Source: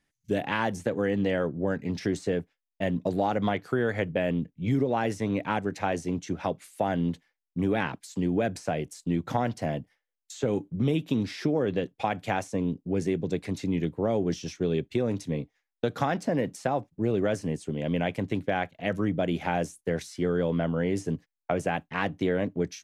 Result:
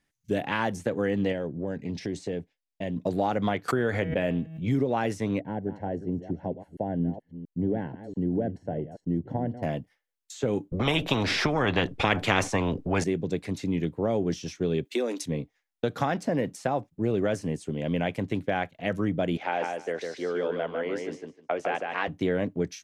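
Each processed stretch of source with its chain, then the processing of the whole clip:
1.32–2.97 s: Bessel low-pass 7.9 kHz + peaking EQ 1.3 kHz -11 dB 0.65 oct + compression 2:1, threshold -29 dBFS
3.68–4.63 s: de-hum 160.7 Hz, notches 39 + swell ahead of each attack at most 68 dB/s
5.40–9.63 s: chunks repeated in reverse 228 ms, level -12 dB + boxcar filter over 36 samples
10.72–13.04 s: tilt EQ -4 dB/octave + spectrum-flattening compressor 4:1
14.85–15.26 s: steep high-pass 250 Hz 48 dB/octave + treble shelf 2.5 kHz +9.5 dB
19.37–22.08 s: three-band isolator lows -23 dB, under 310 Hz, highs -18 dB, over 5.7 kHz + feedback delay 153 ms, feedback 16%, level -4 dB
whole clip: none

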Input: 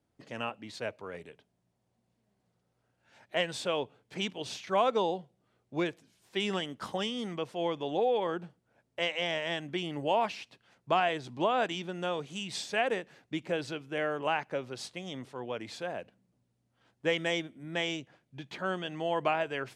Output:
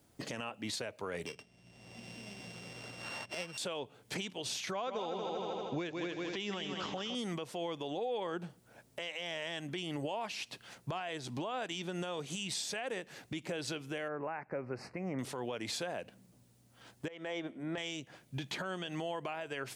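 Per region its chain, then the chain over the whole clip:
1.26–3.58 s: sorted samples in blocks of 16 samples + distance through air 120 m + three bands compressed up and down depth 100%
4.71–7.15 s: median filter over 5 samples + steep low-pass 7.2 kHz 72 dB/octave + multi-head delay 79 ms, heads second and third, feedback 43%, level -10 dB
14.08–15.19 s: Chebyshev band-stop 2.2–5.2 kHz + distance through air 450 m
17.08–17.78 s: band-pass filter 710 Hz, Q 0.7 + compression 4:1, threshold -42 dBFS
whole clip: treble shelf 5.2 kHz +11.5 dB; compression 8:1, threshold -43 dBFS; peak limiter -38.5 dBFS; trim +10 dB

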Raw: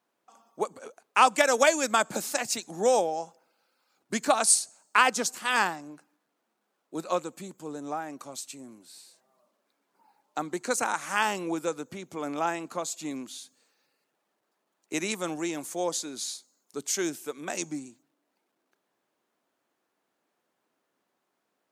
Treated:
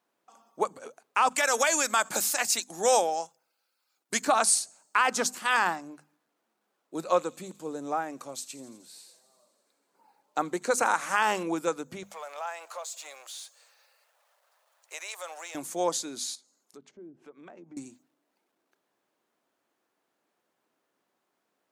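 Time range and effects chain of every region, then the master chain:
1.29–4.22 s: gate -44 dBFS, range -9 dB + tilt EQ +2.5 dB/octave
7.02–11.43 s: peaking EQ 500 Hz +5 dB 0.41 oct + feedback echo behind a high-pass 85 ms, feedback 77%, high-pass 3.6 kHz, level -16.5 dB
12.03–15.55 s: companding laws mixed up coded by mu + elliptic high-pass 540 Hz, stop band 60 dB + compression 2:1, threshold -39 dBFS
16.35–17.77 s: low-pass that closes with the level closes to 390 Hz, closed at -27 dBFS + compression 2:1, threshold -56 dBFS
whole clip: dynamic bell 1.2 kHz, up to +6 dB, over -35 dBFS, Q 0.72; hum notches 50/100/150/200/250 Hz; peak limiter -12.5 dBFS

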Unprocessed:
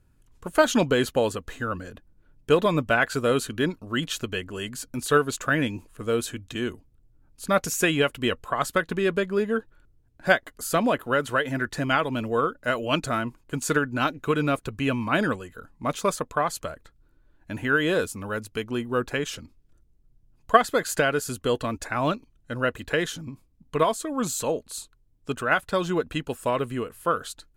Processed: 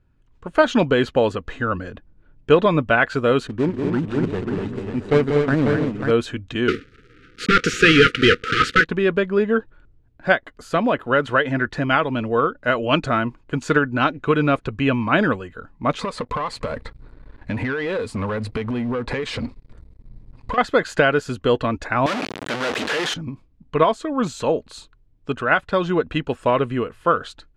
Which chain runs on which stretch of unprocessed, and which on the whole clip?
3.47–6.11 s: median filter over 41 samples + peaking EQ 8.2 kHz +8 dB 0.52 oct + multi-tap echo 160/187/242/542/672 ms -20/-6.5/-5.5/-6/-14.5 dB
6.68–8.85 s: block-companded coder 3-bit + overdrive pedal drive 26 dB, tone 2.9 kHz, clips at -8.5 dBFS + brick-wall FIR band-stop 520–1200 Hz
15.99–20.58 s: rippled EQ curve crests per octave 0.95, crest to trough 9 dB + compression 16:1, threshold -36 dBFS + waveshaping leveller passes 3
22.06–23.14 s: one-bit comparator + high-pass 280 Hz + treble shelf 4.6 kHz +6.5 dB
whole clip: level rider gain up to 7 dB; low-pass 3.4 kHz 12 dB/octave

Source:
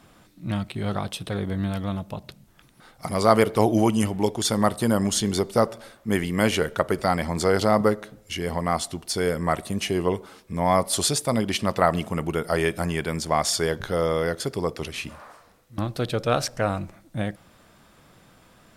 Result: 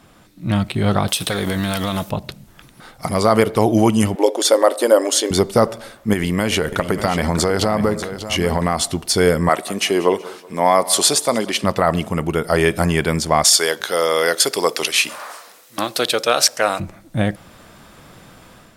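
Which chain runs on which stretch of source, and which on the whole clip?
1.08–2.10 s: tilt EQ +3 dB/octave + compression, threshold -33 dBFS + waveshaping leveller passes 2
4.15–5.31 s: brick-wall FIR high-pass 250 Hz + peaking EQ 550 Hz +12.5 dB 0.29 oct
6.13–8.87 s: compression 12:1, threshold -23 dBFS + delay 592 ms -11.5 dB
9.49–11.64 s: high-pass 310 Hz + feedback delay 187 ms, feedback 41%, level -20 dB
13.44–16.80 s: high-pass 390 Hz + treble shelf 2.3 kHz +10.5 dB
whole clip: level rider gain up to 6.5 dB; loudness maximiser +5 dB; trim -1 dB

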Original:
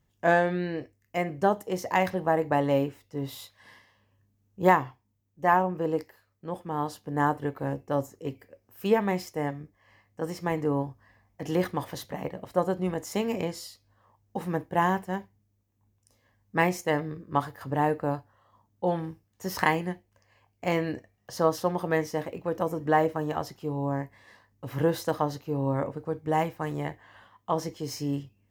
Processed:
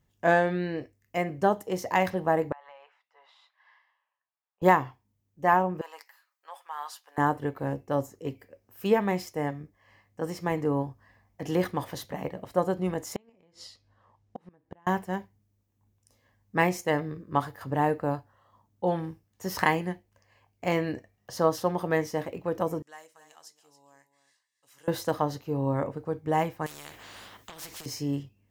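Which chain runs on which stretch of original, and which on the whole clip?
2.52–4.62 s: inverse Chebyshev high-pass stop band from 330 Hz, stop band 50 dB + compression 8:1, threshold -40 dBFS + tape spacing loss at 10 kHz 39 dB
5.81–7.18 s: high-pass 880 Hz 24 dB/octave + comb 7.3 ms, depth 40%
13.16–14.87 s: low-pass 5.5 kHz + compression 2:1, threshold -32 dBFS + inverted gate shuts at -26 dBFS, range -29 dB
22.82–24.88 s: band-pass filter 7.8 kHz, Q 1.8 + delay 278 ms -13 dB
26.66–27.86 s: compression, threshold -37 dBFS + spectrum-flattening compressor 4:1
whole clip: none

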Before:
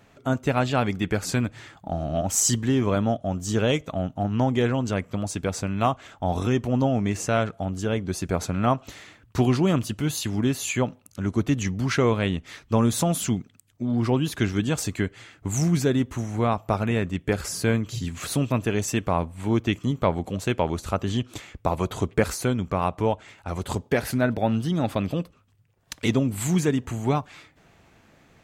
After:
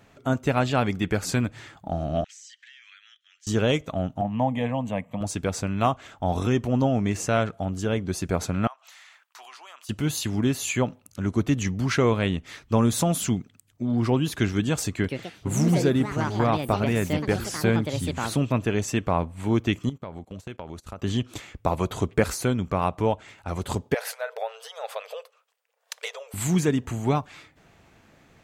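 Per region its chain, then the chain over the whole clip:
2.24–3.47 s: steep high-pass 1.7 kHz 48 dB/octave + distance through air 140 m + compression 4:1, threshold -47 dBFS
4.21–5.21 s: high-pass 190 Hz + tilt shelf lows +5 dB, about 1.4 kHz + static phaser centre 1.4 kHz, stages 6
8.67–9.89 s: high-pass 840 Hz 24 dB/octave + compression 2.5:1, threshold -48 dBFS
14.89–19.37 s: treble shelf 8.2 kHz -8 dB + ever faster or slower copies 150 ms, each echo +5 st, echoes 2, each echo -6 dB
19.89–21.02 s: gate -33 dBFS, range -20 dB + compression 5:1, threshold -34 dBFS
23.94–26.34 s: compression 4:1, threshold -23 dBFS + brick-wall FIR high-pass 430 Hz
whole clip: none

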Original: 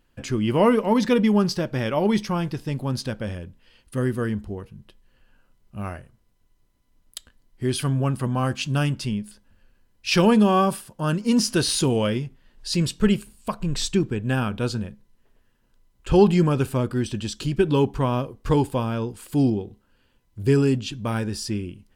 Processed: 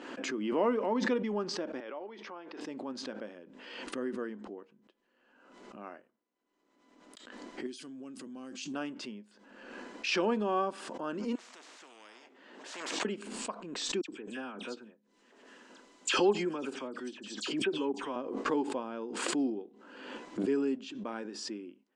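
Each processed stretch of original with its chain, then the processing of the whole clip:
1.80–2.61 s: compression, threshold -26 dBFS + band-pass 360–3800 Hz
7.66–8.74 s: FFT filter 290 Hz 0 dB, 930 Hz -13 dB, 6.2 kHz +10 dB + compression 3:1, threshold -26 dBFS
11.35–13.05 s: compression 2.5:1, threshold -30 dBFS + spectrum-flattening compressor 10:1
14.01–18.16 s: treble shelf 2.8 kHz +10.5 dB + phase dispersion lows, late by 73 ms, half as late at 2.6 kHz + upward expansion, over -36 dBFS
whole clip: elliptic band-pass 270–7500 Hz, stop band 40 dB; treble shelf 2.7 kHz -12 dB; swell ahead of each attack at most 42 dB/s; trim -9 dB

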